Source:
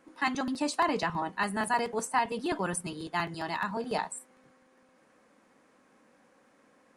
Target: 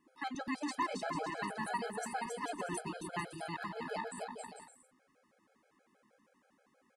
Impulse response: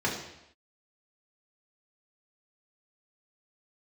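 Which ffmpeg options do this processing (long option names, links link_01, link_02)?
-af "aecho=1:1:270|445.5|559.6|633.7|681.9:0.631|0.398|0.251|0.158|0.1,afftfilt=real='re*gt(sin(2*PI*6.3*pts/sr)*(1-2*mod(floor(b*sr/1024/430),2)),0)':imag='im*gt(sin(2*PI*6.3*pts/sr)*(1-2*mod(floor(b*sr/1024/430),2)),0)':win_size=1024:overlap=0.75,volume=-7dB"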